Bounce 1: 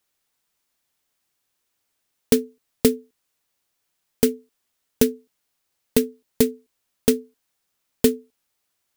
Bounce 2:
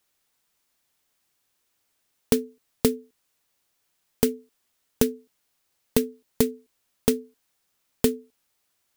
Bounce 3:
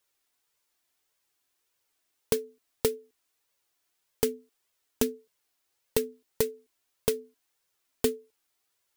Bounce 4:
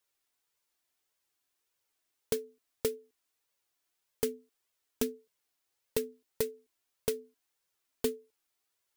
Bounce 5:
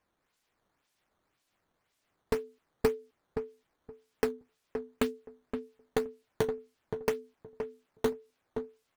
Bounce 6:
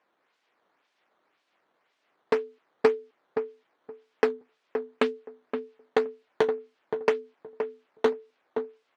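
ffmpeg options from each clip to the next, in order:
-af "acompressor=threshold=-23dB:ratio=2,volume=2dB"
-af "lowshelf=f=220:g=-5.5,flanger=delay=1.8:depth=1.3:regen=-24:speed=1.7:shape=triangular"
-af "asoftclip=type=hard:threshold=-15.5dB,volume=-4.5dB"
-filter_complex "[0:a]acrossover=split=2700[a][b];[b]acrusher=samples=10:mix=1:aa=0.000001:lfo=1:lforange=16:lforate=1.9[c];[a][c]amix=inputs=2:normalize=0,asplit=2[d][e];[e]adelay=521,lowpass=f=1k:p=1,volume=-6dB,asplit=2[f][g];[g]adelay=521,lowpass=f=1k:p=1,volume=0.2,asplit=2[h][i];[i]adelay=521,lowpass=f=1k:p=1,volume=0.2[j];[d][f][h][j]amix=inputs=4:normalize=0,volume=2.5dB"
-af "highpass=350,lowpass=3.4k,volume=8dB"

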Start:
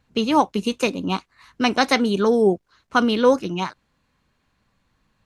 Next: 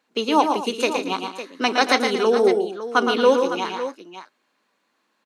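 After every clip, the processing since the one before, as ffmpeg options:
-filter_complex "[0:a]highpass=f=280:w=0.5412,highpass=f=280:w=1.3066,asplit=2[a][b];[b]aecho=0:1:115|148|228|556:0.501|0.266|0.178|0.251[c];[a][c]amix=inputs=2:normalize=0"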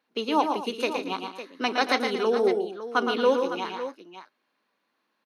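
-af "equalizer=f=7.5k:t=o:w=0.41:g=-12.5,volume=-5.5dB"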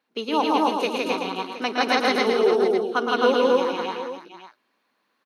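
-af "aecho=1:1:163.3|262.4:0.891|0.891"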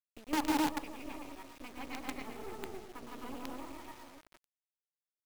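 -filter_complex "[0:a]asplit=3[a][b][c];[a]bandpass=f=300:t=q:w=8,volume=0dB[d];[b]bandpass=f=870:t=q:w=8,volume=-6dB[e];[c]bandpass=f=2.24k:t=q:w=8,volume=-9dB[f];[d][e][f]amix=inputs=3:normalize=0,acrusher=bits=5:dc=4:mix=0:aa=0.000001,volume=-5dB"

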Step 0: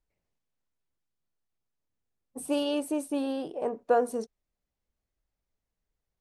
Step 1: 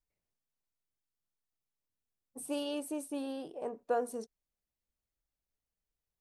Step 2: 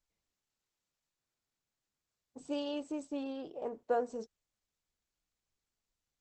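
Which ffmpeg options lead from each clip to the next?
-af "highshelf=f=5.2k:g=6,volume=-8dB"
-ar 48000 -c:a libopus -b:a 12k

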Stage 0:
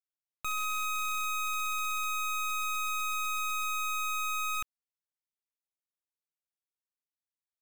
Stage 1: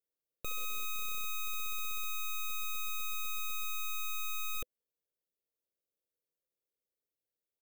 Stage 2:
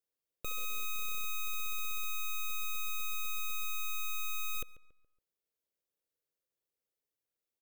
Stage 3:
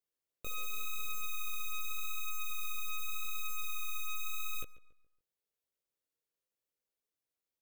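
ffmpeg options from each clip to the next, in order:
-af "firequalizer=gain_entry='entry(230,0);entry(500,12);entry(880,-17);entry(3400,-6);entry(7300,-8);entry(14000,1)':delay=0.05:min_phase=1,volume=2.5dB"
-filter_complex "[0:a]asplit=2[a][b];[b]adelay=140,lowpass=f=2.5k:p=1,volume=-16.5dB,asplit=2[c][d];[d]adelay=140,lowpass=f=2.5k:p=1,volume=0.42,asplit=2[e][f];[f]adelay=140,lowpass=f=2.5k:p=1,volume=0.42,asplit=2[g][h];[h]adelay=140,lowpass=f=2.5k:p=1,volume=0.42[i];[a][c][e][g][i]amix=inputs=5:normalize=0"
-af "flanger=delay=16.5:depth=4.9:speed=0.85,volume=1dB"

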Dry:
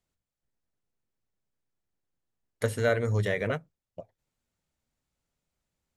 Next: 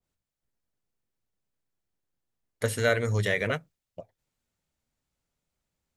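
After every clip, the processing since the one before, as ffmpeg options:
-af "adynamicequalizer=threshold=0.00794:dfrequency=1500:dqfactor=0.7:tfrequency=1500:tqfactor=0.7:attack=5:release=100:ratio=0.375:range=3.5:mode=boostabove:tftype=highshelf"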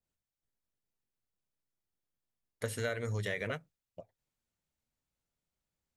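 -af "acompressor=threshold=-24dB:ratio=6,volume=-6.5dB"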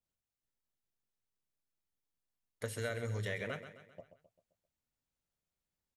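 -af "aecho=1:1:131|262|393|524|655:0.282|0.135|0.0649|0.0312|0.015,volume=-3.5dB"

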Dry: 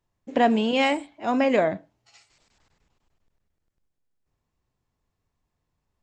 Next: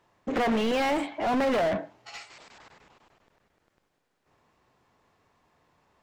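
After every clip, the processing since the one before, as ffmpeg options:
-filter_complex "[0:a]aeval=exprs='0.15*(abs(mod(val(0)/0.15+3,4)-2)-1)':c=same,asplit=2[a][b];[b]highpass=f=720:p=1,volume=31dB,asoftclip=type=tanh:threshold=-16dB[c];[a][c]amix=inputs=2:normalize=0,lowpass=f=1.5k:p=1,volume=-6dB,volume=-3.5dB"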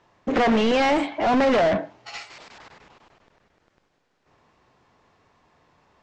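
-af "lowpass=f=7k:w=0.5412,lowpass=f=7k:w=1.3066,volume=6dB"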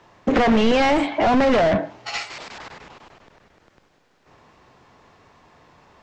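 -filter_complex "[0:a]acrossover=split=150[a][b];[b]acompressor=threshold=-27dB:ratio=2.5[c];[a][c]amix=inputs=2:normalize=0,volume=8.5dB"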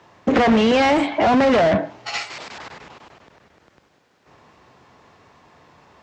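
-af "highpass=61,volume=1.5dB"

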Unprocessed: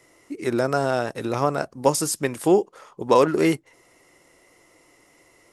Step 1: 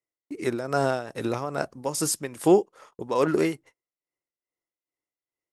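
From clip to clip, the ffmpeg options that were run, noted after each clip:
-af "tremolo=f=2.4:d=0.72,agate=range=-37dB:threshold=-47dB:ratio=16:detection=peak"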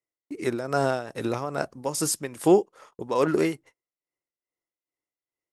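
-af anull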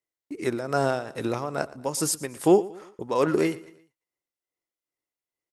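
-af "aecho=1:1:116|232|348:0.106|0.0445|0.0187"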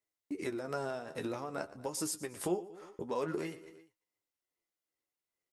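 -af "acompressor=threshold=-37dB:ratio=2.5,flanger=delay=9.6:depth=2.9:regen=37:speed=0.5:shape=sinusoidal,volume=2.5dB"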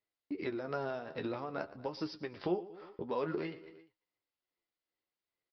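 -af "aresample=11025,aresample=44100"

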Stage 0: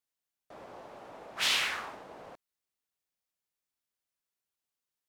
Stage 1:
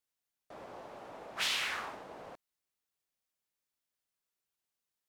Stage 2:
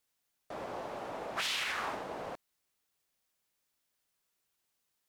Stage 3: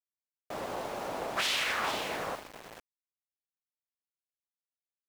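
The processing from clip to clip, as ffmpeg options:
-af "acompressor=threshold=-31dB:ratio=3"
-af "alimiter=level_in=8.5dB:limit=-24dB:level=0:latency=1:release=202,volume=-8.5dB,volume=7.5dB"
-af "aecho=1:1:446:0.376,aeval=exprs='val(0)*gte(abs(val(0)),0.00531)':c=same,volume=4dB"

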